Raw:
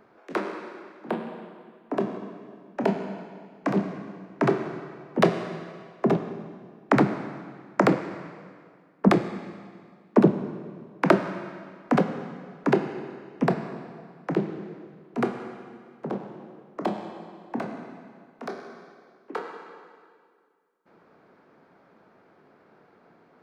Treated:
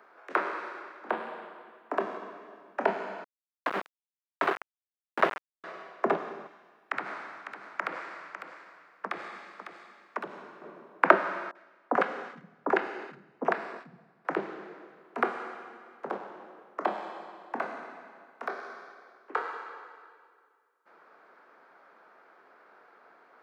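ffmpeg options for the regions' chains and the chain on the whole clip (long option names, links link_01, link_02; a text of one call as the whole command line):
ffmpeg -i in.wav -filter_complex "[0:a]asettb=1/sr,asplit=3[link_01][link_02][link_03];[link_01]atrim=end=3.244[link_04];[link_02]atrim=start=3.24:end=5.64,asetpts=PTS-STARTPTS,afade=type=in:duration=0.004:curve=qsin,afade=type=out:start_time=2.396:duration=0.004:curve=qsin,aeval=exprs='(tanh(3.55*val(0)+0.6)-tanh(0.6))/3.55':channel_layout=same,aeval=exprs='val(0)*gte(abs(val(0)),0.0596)':channel_layout=same[link_05];[link_03]atrim=start=5.636[link_06];[link_04][link_05]acrossfade=duration=0.004:curve1=hsin:curve2=qsin[link_07];[link_07][link_06]acrossfade=duration=0.004:curve1=qsin:curve2=hsin,asettb=1/sr,asplit=3[link_08][link_09][link_10];[link_08]atrim=end=6.474[link_11];[link_09]atrim=start=6.47:end=10.62,asetpts=PTS-STARTPTS,afade=type=in:duration=0.004:curve=qsin,afade=type=out:start_time=4.146:duration=0.004:curve=qsin,equalizer=frequency=310:width=0.31:gain=-10.5,acompressor=threshold=-29dB:ratio=5:attack=3.2:release=140:knee=1:detection=peak,aecho=1:1:552:0.316,atrim=end_sample=183015[link_12];[link_10]atrim=start=10.616[link_13];[link_11][link_12]acrossfade=duration=0.004:curve1=hsin:curve2=qsin[link_14];[link_14][link_13]acrossfade=duration=0.004:curve1=qsin:curve2=hsin,asettb=1/sr,asplit=3[link_15][link_16][link_17];[link_15]atrim=end=11.514[link_18];[link_16]atrim=start=11.51:end=14.25,asetpts=PTS-STARTPTS,afade=type=in:duration=0.004:curve=qsin,afade=type=out:start_time=2.736:duration=0.004:curve=qsin,agate=range=-13dB:threshold=-38dB:ratio=16:release=100:detection=peak,acrossover=split=150|1100[link_19][link_20][link_21];[link_21]adelay=40[link_22];[link_19]adelay=430[link_23];[link_23][link_20][link_22]amix=inputs=3:normalize=0,atrim=end_sample=120834[link_24];[link_17]atrim=start=14.246[link_25];[link_18][link_24]acrossfade=duration=0.004:curve1=hsin:curve2=qsin[link_26];[link_26][link_25]acrossfade=duration=0.004:curve1=qsin:curve2=hsin,acrossover=split=3400[link_27][link_28];[link_28]acompressor=threshold=-58dB:ratio=4:attack=1:release=60[link_29];[link_27][link_29]amix=inputs=2:normalize=0,highpass=480,equalizer=frequency=1400:width_type=o:width=1.2:gain=7,volume=-1dB" out.wav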